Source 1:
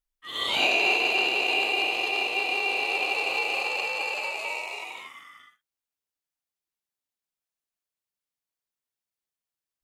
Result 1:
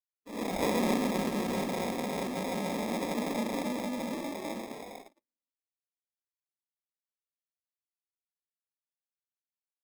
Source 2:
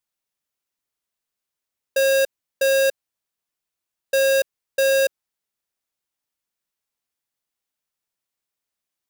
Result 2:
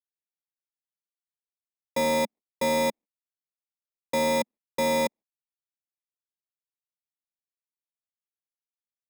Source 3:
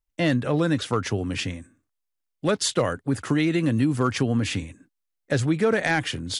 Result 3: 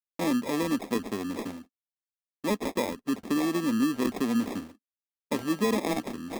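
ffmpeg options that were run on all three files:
-af "acrusher=samples=30:mix=1:aa=0.000001,agate=range=-51dB:threshold=-40dB:ratio=16:detection=peak,lowshelf=f=170:t=q:w=3:g=-9,volume=-7dB"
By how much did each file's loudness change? -8.5, -6.5, -5.0 LU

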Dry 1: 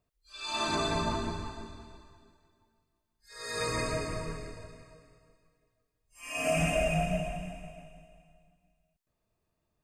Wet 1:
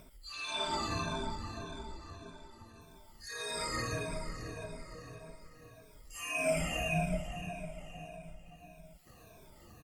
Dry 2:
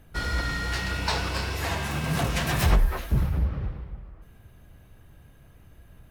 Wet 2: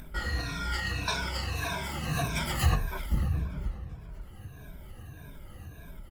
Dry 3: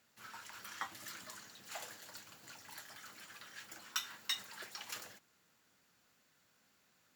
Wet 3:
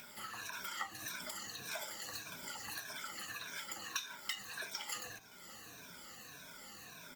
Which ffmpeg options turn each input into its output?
-filter_complex "[0:a]afftfilt=real='re*pow(10,17/40*sin(2*PI*(1.6*log(max(b,1)*sr/1024/100)/log(2)-(-1.7)*(pts-256)/sr)))':imag='im*pow(10,17/40*sin(2*PI*(1.6*log(max(b,1)*sr/1024/100)/log(2)-(-1.7)*(pts-256)/sr)))':win_size=1024:overlap=0.75,bandreject=f=111.2:t=h:w=4,bandreject=f=222.4:t=h:w=4,bandreject=f=333.6:t=h:w=4,bandreject=f=444.8:t=h:w=4,bandreject=f=556:t=h:w=4,bandreject=f=667.2:t=h:w=4,bandreject=f=778.4:t=h:w=4,adynamicequalizer=threshold=0.00708:dfrequency=460:dqfactor=1.1:tfrequency=460:tqfactor=1.1:attack=5:release=100:ratio=0.375:range=2:mode=cutabove:tftype=bell,acompressor=mode=upward:threshold=-27dB:ratio=2.5,asplit=2[a][b];[b]aecho=0:1:513|1026|1539:0.0631|0.0341|0.0184[c];[a][c]amix=inputs=2:normalize=0,volume=-6.5dB" -ar 48000 -c:a libopus -b:a 20k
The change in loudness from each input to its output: -5.0, -4.5, +2.0 LU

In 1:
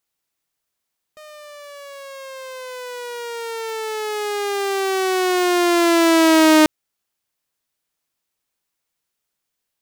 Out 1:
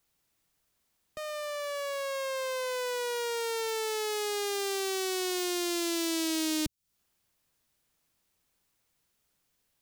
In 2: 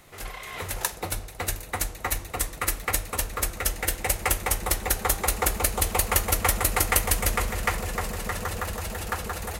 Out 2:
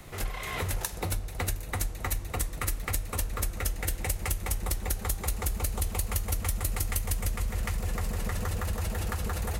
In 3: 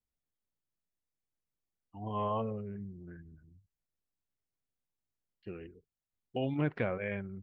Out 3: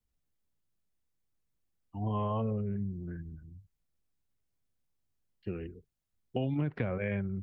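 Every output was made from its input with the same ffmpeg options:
-filter_complex "[0:a]acrossover=split=210|3000[a][b][c];[b]acompressor=threshold=-31dB:ratio=6[d];[a][d][c]amix=inputs=3:normalize=0,lowshelf=f=250:g=9,acompressor=threshold=-31dB:ratio=4,volume=2.5dB"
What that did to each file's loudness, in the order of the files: -14.0, -6.0, +1.5 LU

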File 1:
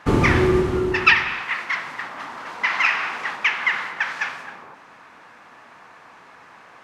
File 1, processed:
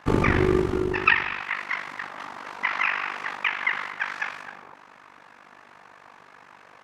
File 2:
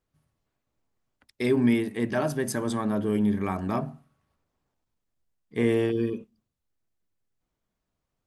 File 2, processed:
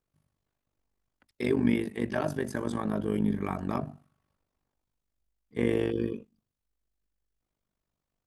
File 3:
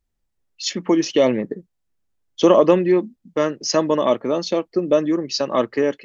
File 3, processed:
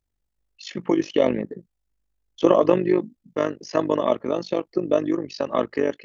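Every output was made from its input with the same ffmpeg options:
-filter_complex "[0:a]acrossover=split=3000[a][b];[b]acompressor=threshold=-39dB:ratio=4:attack=1:release=60[c];[a][c]amix=inputs=2:normalize=0,tremolo=f=49:d=0.824"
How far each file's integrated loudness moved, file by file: -4.5, -3.5, -4.0 LU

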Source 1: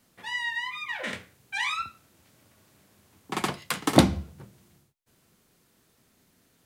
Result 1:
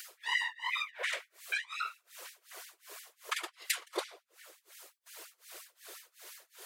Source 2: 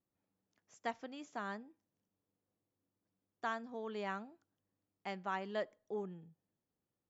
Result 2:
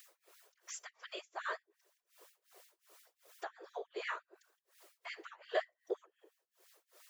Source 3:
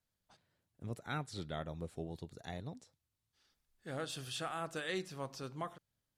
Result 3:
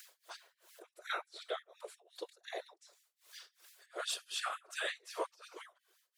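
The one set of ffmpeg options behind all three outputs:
-af "acompressor=threshold=-43dB:ratio=3,bandreject=f=381.8:t=h:w=4,bandreject=f=763.6:t=h:w=4,bandreject=f=1.1454k:t=h:w=4,bandreject=f=1.5272k:t=h:w=4,bandreject=f=1.909k:t=h:w=4,bandreject=f=2.2908k:t=h:w=4,bandreject=f=2.6726k:t=h:w=4,bandreject=f=3.0544k:t=h:w=4,bandreject=f=3.4362k:t=h:w=4,bandreject=f=3.818k:t=h:w=4,bandreject=f=4.1998k:t=h:w=4,bandreject=f=4.5816k:t=h:w=4,bandreject=f=4.9634k:t=h:w=4,bandreject=f=5.3452k:t=h:w=4,bandreject=f=5.727k:t=h:w=4,bandreject=f=6.1088k:t=h:w=4,bandreject=f=6.4906k:t=h:w=4,bandreject=f=6.8724k:t=h:w=4,bandreject=f=7.2542k:t=h:w=4,bandreject=f=7.636k:t=h:w=4,bandreject=f=8.0178k:t=h:w=4,bandreject=f=8.3996k:t=h:w=4,bandreject=f=8.7814k:t=h:w=4,bandreject=f=9.1632k:t=h:w=4,bandreject=f=9.545k:t=h:w=4,bandreject=f=9.9268k:t=h:w=4,bandreject=f=10.3086k:t=h:w=4,bandreject=f=10.6904k:t=h:w=4,bandreject=f=11.0722k:t=h:w=4,bandreject=f=11.454k:t=h:w=4,bandreject=f=11.8358k:t=h:w=4,acompressor=mode=upward:threshold=-49dB:ratio=2.5,tremolo=f=2.7:d=0.97,asuperstop=centerf=820:order=12:qfactor=5.8,afftfilt=real='hypot(re,im)*cos(2*PI*random(0))':imag='hypot(re,im)*sin(2*PI*random(1))':win_size=512:overlap=0.75,afftfilt=real='re*gte(b*sr/1024,320*pow(1700/320,0.5+0.5*sin(2*PI*5.7*pts/sr)))':imag='im*gte(b*sr/1024,320*pow(1700/320,0.5+0.5*sin(2*PI*5.7*pts/sr)))':win_size=1024:overlap=0.75,volume=18dB"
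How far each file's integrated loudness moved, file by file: -7.5, -0.5, +0.5 LU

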